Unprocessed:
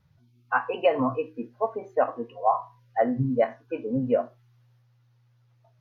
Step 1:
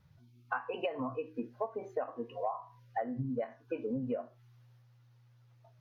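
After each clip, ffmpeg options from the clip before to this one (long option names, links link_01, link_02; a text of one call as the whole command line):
ffmpeg -i in.wav -af "acompressor=threshold=-32dB:ratio=12" out.wav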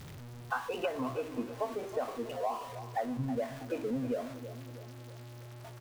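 ffmpeg -i in.wav -filter_complex "[0:a]aeval=exprs='val(0)+0.5*0.00794*sgn(val(0))':channel_layout=same,asplit=2[link_01][link_02];[link_02]adelay=321,lowpass=frequency=2000:poles=1,volume=-12dB,asplit=2[link_03][link_04];[link_04]adelay=321,lowpass=frequency=2000:poles=1,volume=0.52,asplit=2[link_05][link_06];[link_06]adelay=321,lowpass=frequency=2000:poles=1,volume=0.52,asplit=2[link_07][link_08];[link_08]adelay=321,lowpass=frequency=2000:poles=1,volume=0.52,asplit=2[link_09][link_10];[link_10]adelay=321,lowpass=frequency=2000:poles=1,volume=0.52[link_11];[link_03][link_05][link_07][link_09][link_11]amix=inputs=5:normalize=0[link_12];[link_01][link_12]amix=inputs=2:normalize=0" out.wav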